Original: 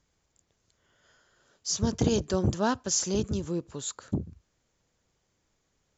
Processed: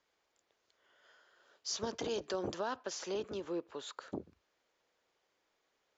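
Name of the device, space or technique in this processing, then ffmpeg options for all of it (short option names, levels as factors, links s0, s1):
DJ mixer with the lows and highs turned down: -filter_complex "[0:a]acrossover=split=340 5300:gain=0.0708 1 0.0631[s0][s1][s2];[s0][s1][s2]amix=inputs=3:normalize=0,alimiter=level_in=1.5:limit=0.0631:level=0:latency=1:release=52,volume=0.668,asettb=1/sr,asplit=3[s3][s4][s5];[s3]atrim=end=2.764[s6];[s4]atrim=start=2.76:end=3.97,asetpts=PTS-STARTPTS,afade=t=in:d=0.004:c=qsin,afade=t=out:st=1.206:d=0.004:c=qsin,bass=f=250:g=-3,treble=f=4000:g=-8[s7];[s5]atrim=start=3.966[s8];[s6][s7]acrossfade=d=0.004:c1=hsin:c2=qsin[s9];[s9][s8]acrossfade=d=0.004:c1=qsin:c2=hsin"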